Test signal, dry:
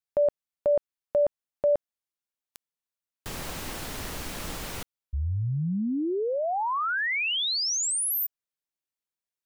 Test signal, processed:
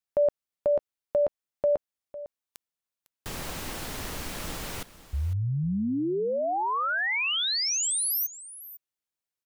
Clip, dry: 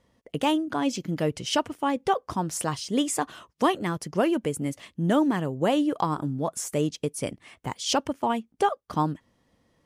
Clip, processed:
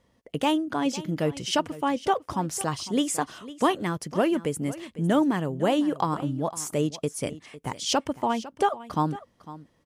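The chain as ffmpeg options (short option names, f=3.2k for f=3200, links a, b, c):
-af "aecho=1:1:503:0.15"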